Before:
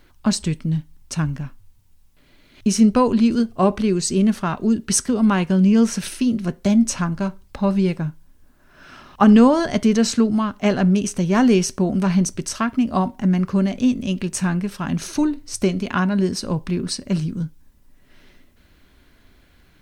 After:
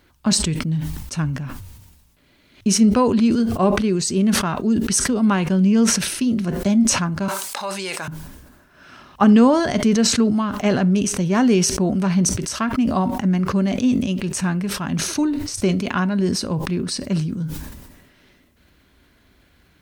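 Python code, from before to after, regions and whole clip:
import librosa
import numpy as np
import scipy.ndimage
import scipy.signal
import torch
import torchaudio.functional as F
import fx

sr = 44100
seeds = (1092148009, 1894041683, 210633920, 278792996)

y = fx.chain(x, sr, fx.highpass(hz=780.0, slope=12),
    fx.peak_eq(hz=8700.0, db=11.0, octaves=1.4),
    fx.env_flatten(amount_pct=70), at=(7.28, 8.08))
y = scipy.signal.sosfilt(scipy.signal.butter(2, 46.0, 'highpass', fs=sr, output='sos'), y)
y = fx.sustainer(y, sr, db_per_s=46.0)
y = y * librosa.db_to_amplitude(-1.0)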